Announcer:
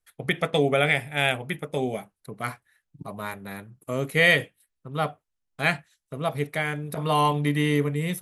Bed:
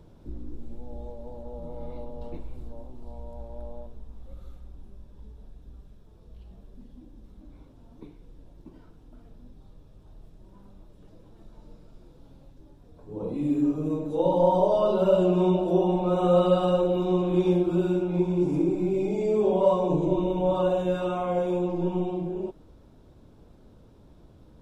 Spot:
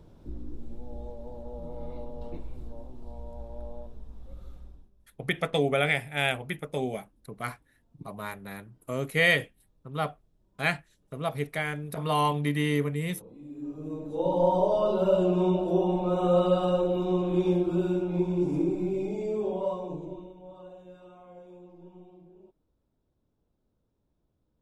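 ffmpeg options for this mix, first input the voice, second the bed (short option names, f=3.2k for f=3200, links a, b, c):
-filter_complex "[0:a]adelay=5000,volume=-3.5dB[a];[1:a]volume=14.5dB,afade=t=out:st=4.62:d=0.28:silence=0.141254,afade=t=in:st=13.53:d=0.89:silence=0.16788,afade=t=out:st=18.65:d=1.71:silence=0.0944061[b];[a][b]amix=inputs=2:normalize=0"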